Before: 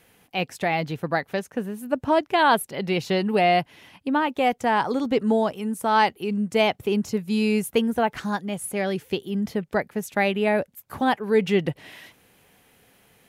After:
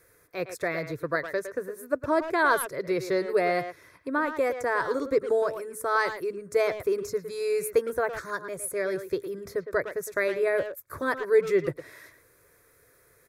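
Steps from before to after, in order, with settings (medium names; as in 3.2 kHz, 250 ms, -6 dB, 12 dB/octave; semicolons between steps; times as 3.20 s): static phaser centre 800 Hz, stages 6; speakerphone echo 110 ms, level -9 dB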